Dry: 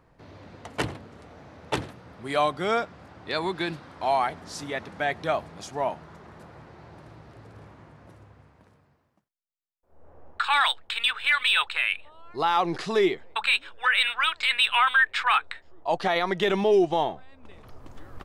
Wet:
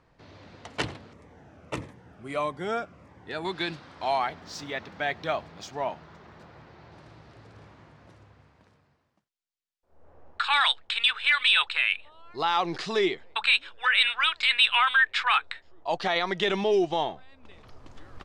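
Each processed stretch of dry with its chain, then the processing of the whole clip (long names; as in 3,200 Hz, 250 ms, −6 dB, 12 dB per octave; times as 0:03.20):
0:01.13–0:03.45: parametric band 4,200 Hz −14 dB 1 octave + phaser whose notches keep moving one way falling 1.6 Hz
0:04.18–0:06.92: high-frequency loss of the air 50 metres + bad sample-rate conversion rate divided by 2×, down none, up zero stuff
whole clip: low-pass filter 5,200 Hz 12 dB per octave; high-shelf EQ 3,000 Hz +11 dB; level −3.5 dB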